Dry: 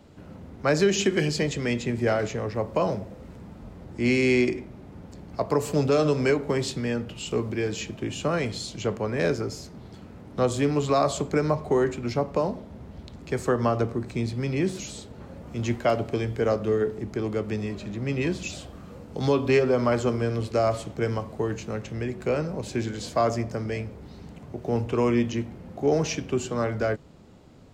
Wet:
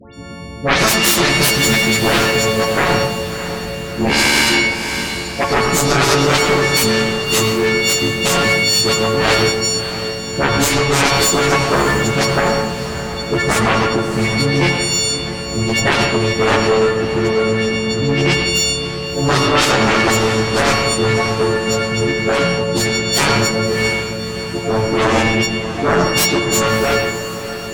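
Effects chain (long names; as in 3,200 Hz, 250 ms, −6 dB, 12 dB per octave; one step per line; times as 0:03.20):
every partial snapped to a pitch grid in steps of 4 semitones
low-pass filter 8,000 Hz
all-pass dispersion highs, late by 140 ms, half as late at 1,800 Hz
harmonic generator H 7 −7 dB, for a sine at −6 dBFS
in parallel at −8 dB: asymmetric clip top −14.5 dBFS, bottom −8.5 dBFS
on the sum: feedback delay with all-pass diffusion 637 ms, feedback 57%, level −11.5 dB
on a send at −4.5 dB: convolution reverb RT60 0.70 s, pre-delay 81 ms
on the sum: boost into a limiter +4.5 dB
level −1 dB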